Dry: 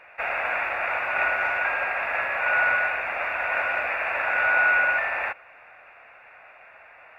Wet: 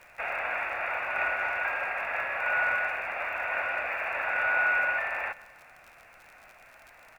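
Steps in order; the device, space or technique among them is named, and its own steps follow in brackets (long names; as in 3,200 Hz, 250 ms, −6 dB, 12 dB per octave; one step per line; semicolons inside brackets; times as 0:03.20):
repeating echo 127 ms, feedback 52%, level −21.5 dB
vinyl LP (surface crackle 62 per second −36 dBFS; pink noise bed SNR 35 dB)
level −5 dB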